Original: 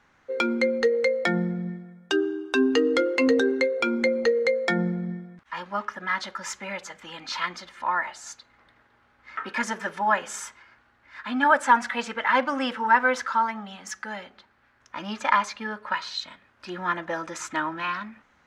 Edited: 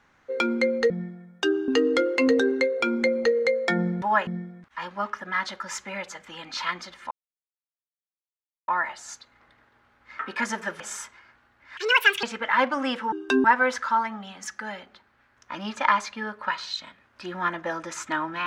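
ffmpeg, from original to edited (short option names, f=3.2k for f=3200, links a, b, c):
-filter_complex "[0:a]asplit=11[a][b][c][d][e][f][g][h][i][j][k];[a]atrim=end=0.902[l];[b]atrim=start=1.578:end=2.362[m];[c]atrim=start=2.678:end=5.022[n];[d]atrim=start=9.978:end=10.232[o];[e]atrim=start=5.018:end=7.86,asetpts=PTS-STARTPTS,afade=t=out:st=2.838:d=0.004:c=hsin,apad=pad_dur=1.57[p];[f]atrim=start=7.86:end=9.982,asetpts=PTS-STARTPTS,afade=t=in:d=0.004:c=hsin[q];[g]atrim=start=10.228:end=11.204[r];[h]atrim=start=11.2:end=11.99,asetpts=PTS-STARTPTS,asetrate=75411,aresample=44100[s];[i]atrim=start=11.986:end=12.882[t];[j]atrim=start=2.358:end=2.682[u];[k]atrim=start=12.878[v];[l][m]acrossfade=d=0.004:c1=hsin:c2=hsin[w];[w][n]acrossfade=d=0.004:c1=hsin:c2=hsin[x];[x][o]acrossfade=d=0.004:c1=hsin:c2=hsin[y];[p][q]concat=n=2:v=0:a=1[z];[y][z]acrossfade=d=0.004:c1=hsin:c2=hsin[aa];[aa][r]acrossfade=d=0.004:c1=hsin:c2=hsin[ab];[ab][s]acrossfade=d=0.004:c1=hsin:c2=hsin[ac];[ac][t]acrossfade=d=0.004:c1=hsin:c2=hsin[ad];[ad][u]acrossfade=d=0.004:c1=hsin:c2=hsin[ae];[ae][v]acrossfade=d=0.004:c1=hsin:c2=hsin"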